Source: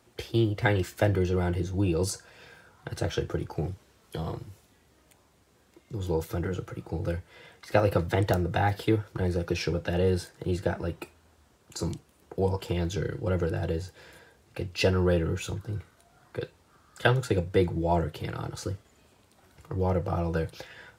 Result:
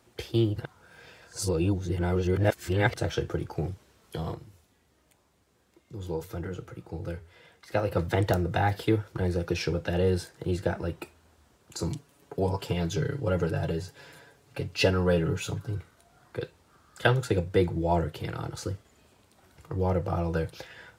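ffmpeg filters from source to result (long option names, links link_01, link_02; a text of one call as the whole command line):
ffmpeg -i in.wav -filter_complex "[0:a]asettb=1/sr,asplit=3[link_01][link_02][link_03];[link_01]atrim=end=4.344[link_04];[link_02]atrim=start=4.34:end=7.97,asetpts=PTS-STARTPTS,afade=type=in:duration=0.004:curve=qsin,afade=type=out:start_time=3.626:duration=0.004:curve=qsin,flanger=delay=3.6:depth=2.7:regen=-89:speed=1.9:shape=triangular[link_05];[link_03]atrim=start=7.966[link_06];[link_04][link_05]acrossfade=duration=0.004:curve1=hsin:curve2=qsin[link_07];[link_07][link_06]acrossfade=duration=0.004:curve1=qsin:curve2=hsin,asettb=1/sr,asplit=3[link_08][link_09][link_10];[link_08]atrim=end=11.904[link_11];[link_09]atrim=start=11.9:end=15.75,asetpts=PTS-STARTPTS,afade=type=in:duration=0.004:curve=qsin,afade=type=out:start_time=3.846:duration=0.004:curve=qsin,aecho=1:1:7.1:0.65,atrim=end_sample=169785[link_12];[link_10]atrim=start=15.746[link_13];[link_11][link_12]acrossfade=duration=0.004:curve1=hsin:curve2=qsin[link_14];[link_14][link_13]acrossfade=duration=0.004:curve1=qsin:curve2=hsin,asplit=3[link_15][link_16][link_17];[link_15]atrim=end=0.562[link_18];[link_16]atrim=start=0.558:end=2.962,asetpts=PTS-STARTPTS,areverse[link_19];[link_17]atrim=start=2.958[link_20];[link_18][link_19]acrossfade=duration=0.004:curve1=hsin:curve2=hsin[link_21];[link_21][link_20]acrossfade=duration=0.004:curve1=hsin:curve2=hsin" out.wav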